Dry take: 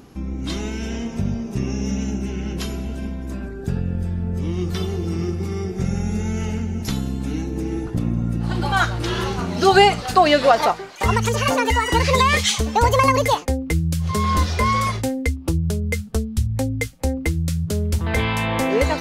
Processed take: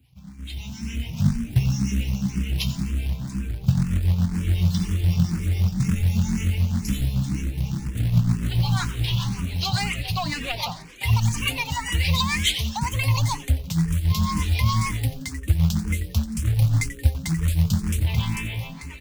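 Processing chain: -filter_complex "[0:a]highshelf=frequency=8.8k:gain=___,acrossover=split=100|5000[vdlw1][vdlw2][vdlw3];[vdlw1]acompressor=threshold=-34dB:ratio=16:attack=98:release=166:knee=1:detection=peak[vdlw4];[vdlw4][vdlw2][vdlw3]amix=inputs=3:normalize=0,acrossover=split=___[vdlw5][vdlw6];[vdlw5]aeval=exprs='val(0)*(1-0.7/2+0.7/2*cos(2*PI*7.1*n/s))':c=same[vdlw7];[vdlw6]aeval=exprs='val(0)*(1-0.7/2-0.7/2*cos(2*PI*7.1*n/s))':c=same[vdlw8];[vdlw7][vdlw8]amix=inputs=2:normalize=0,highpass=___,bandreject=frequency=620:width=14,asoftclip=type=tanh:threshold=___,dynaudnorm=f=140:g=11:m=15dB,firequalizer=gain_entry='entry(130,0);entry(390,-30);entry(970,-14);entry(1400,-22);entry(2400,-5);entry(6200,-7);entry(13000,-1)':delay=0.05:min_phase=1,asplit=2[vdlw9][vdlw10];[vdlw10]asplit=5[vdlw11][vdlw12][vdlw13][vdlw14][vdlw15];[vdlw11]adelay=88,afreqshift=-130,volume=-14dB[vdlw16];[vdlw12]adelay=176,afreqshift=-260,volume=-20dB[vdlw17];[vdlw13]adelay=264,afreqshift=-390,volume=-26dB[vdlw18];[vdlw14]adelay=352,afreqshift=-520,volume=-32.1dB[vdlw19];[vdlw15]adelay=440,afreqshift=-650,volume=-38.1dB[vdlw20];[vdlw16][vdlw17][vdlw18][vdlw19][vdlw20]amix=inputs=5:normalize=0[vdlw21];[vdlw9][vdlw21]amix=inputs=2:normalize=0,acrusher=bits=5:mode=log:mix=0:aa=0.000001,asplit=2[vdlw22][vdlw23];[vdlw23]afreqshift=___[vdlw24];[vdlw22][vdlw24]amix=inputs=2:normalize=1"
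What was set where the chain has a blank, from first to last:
-6, 510, 63, -12dB, 2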